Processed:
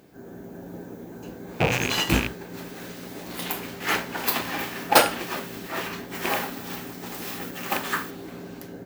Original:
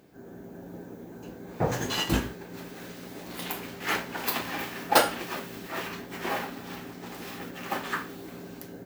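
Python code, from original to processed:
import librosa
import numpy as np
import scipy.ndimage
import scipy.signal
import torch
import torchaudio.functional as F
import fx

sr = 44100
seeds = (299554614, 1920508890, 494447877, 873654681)

y = fx.rattle_buzz(x, sr, strikes_db=-35.0, level_db=-17.0)
y = fx.high_shelf(y, sr, hz=6200.0, db=fx.steps((0.0, 2.0), (6.14, 9.0), (8.09, -4.5)))
y = y * librosa.db_to_amplitude(3.5)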